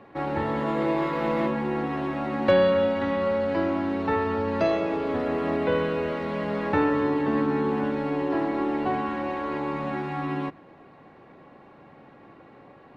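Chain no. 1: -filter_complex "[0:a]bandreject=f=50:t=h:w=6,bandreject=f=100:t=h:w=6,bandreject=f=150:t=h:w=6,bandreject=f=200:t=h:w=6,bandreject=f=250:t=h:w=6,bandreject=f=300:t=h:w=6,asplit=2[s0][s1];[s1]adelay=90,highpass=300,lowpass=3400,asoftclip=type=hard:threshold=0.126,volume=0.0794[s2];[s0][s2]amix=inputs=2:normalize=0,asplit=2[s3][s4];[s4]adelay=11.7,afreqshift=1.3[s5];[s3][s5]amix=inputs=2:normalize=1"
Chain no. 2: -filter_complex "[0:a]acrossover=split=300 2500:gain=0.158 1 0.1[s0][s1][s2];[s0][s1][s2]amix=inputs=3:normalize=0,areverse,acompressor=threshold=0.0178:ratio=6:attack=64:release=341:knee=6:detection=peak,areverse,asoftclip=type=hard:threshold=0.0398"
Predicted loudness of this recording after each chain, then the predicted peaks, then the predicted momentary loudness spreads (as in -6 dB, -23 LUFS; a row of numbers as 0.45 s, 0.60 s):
-29.0 LUFS, -36.0 LUFS; -13.5 dBFS, -28.0 dBFS; 7 LU, 18 LU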